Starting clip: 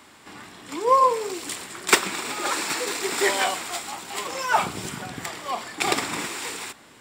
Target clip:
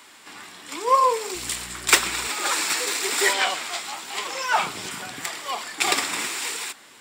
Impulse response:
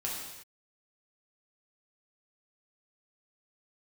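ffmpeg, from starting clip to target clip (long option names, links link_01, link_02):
-filter_complex "[0:a]asettb=1/sr,asplit=3[link_01][link_02][link_03];[link_01]atrim=end=1.354[link_04];[link_02]atrim=start=1.35:end=2.28,asetpts=PTS-STARTPTS,afade=type=in:duration=0.004:curve=qsin,afade=type=out:start_time=0.926:duration=0.004:curve=qsin,aeval=exprs='val(0)+0.02*(sin(2*PI*60*n/s)+sin(2*PI*2*60*n/s)/2+sin(2*PI*3*60*n/s)/3+sin(2*PI*4*60*n/s)/4+sin(2*PI*5*60*n/s)/5)':channel_layout=same[link_05];[link_03]atrim=start=2.276[link_06];[link_04][link_05]acrossfade=duration=0.004:curve1=hsin:curve2=qsin[link_07];[link_07][link_06]acrossfade=duration=0.004:curve1=qsin:curve2=hsin,flanger=delay=2:depth=9:regen=69:speed=0.91:shape=sinusoidal,asettb=1/sr,asplit=3[link_08][link_09][link_10];[link_08]atrim=end=3.334[link_11];[link_09]atrim=start=3.33:end=4.91,asetpts=PTS-STARTPTS,afade=type=in:duration=0.004:curve=qsin,afade=type=out:start_time=1.576:duration=0.004:curve=qsin,acrossover=split=6100[link_12][link_13];[link_13]acompressor=threshold=-49dB:ratio=4:attack=1:release=60[link_14];[link_12][link_14]amix=inputs=2:normalize=0[link_15];[link_10]atrim=start=4.906[link_16];[link_11][link_15]acrossfade=duration=0.004:curve1=hsin:curve2=qsin[link_17];[link_17][link_16]acrossfade=duration=0.004:curve1=qsin:curve2=hsin,tiltshelf=frequency=1100:gain=-4.5,acrossover=split=200[link_18][link_19];[link_19]acontrast=56[link_20];[link_18][link_20]amix=inputs=2:normalize=0,volume=-1.5dB"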